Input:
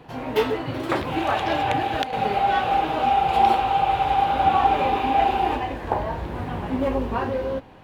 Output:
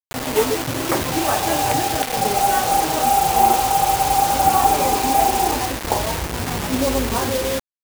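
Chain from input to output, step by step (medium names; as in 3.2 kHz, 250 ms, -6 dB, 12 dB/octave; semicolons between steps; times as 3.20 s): treble shelf 2.4 kHz -11 dB; bit crusher 5-bit; treble shelf 5 kHz +7.5 dB; trim +3.5 dB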